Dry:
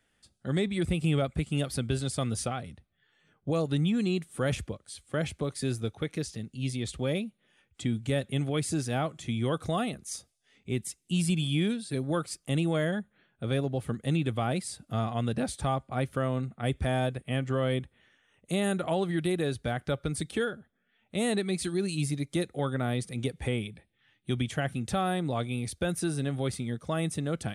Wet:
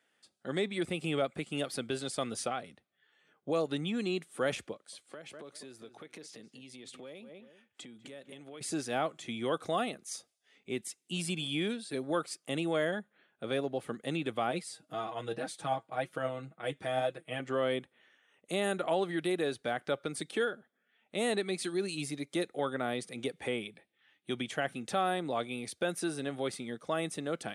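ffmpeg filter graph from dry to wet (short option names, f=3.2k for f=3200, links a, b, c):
-filter_complex "[0:a]asettb=1/sr,asplit=3[a][b][c];[a]atrim=end=4.734[d];[b]atrim=start=4.73:end=8.61,asetpts=PTS-STARTPTS,afade=t=in:d=0.004:c=qsin,afade=t=out:st=3.876:d=0.004:c=qsin,highpass=120,asplit=2[e][f];[f]adelay=195,lowpass=f=2.1k:p=1,volume=-15.5dB,asplit=2[g][h];[h]adelay=195,lowpass=f=2.1k:p=1,volume=0.23[i];[e][g][i]amix=inputs=3:normalize=0,atrim=end_sample=171108,acompressor=threshold=-40dB:ratio=10:attack=3.2:release=140:knee=1:detection=peak[j];[c]atrim=start=8.606[k];[d][j]acrossfade=d=0.004:c1=hsin:c2=qsin[l];[l][k]acrossfade=d=0.004:c1=qsin:c2=hsin,asettb=1/sr,asplit=3[m][n][o];[m]atrim=end=14.514[p];[n]atrim=start=14.51:end=17.4,asetpts=PTS-STARTPTS,afade=t=in:d=0.004:c=qsin,afade=t=out:st=2.886:d=0.004:c=qsin,flanger=delay=5.4:depth=3.4:regen=59:speed=1.9:shape=sinusoidal,aecho=1:1:6.3:0.74,atrim=end_sample=127449[q];[o]atrim=start=17.396[r];[p][q]acrossfade=d=0.004:c1=hsin:c2=qsin[s];[s][r]acrossfade=d=0.004:c1=qsin:c2=hsin,highpass=320,highshelf=f=7k:g=-6.5"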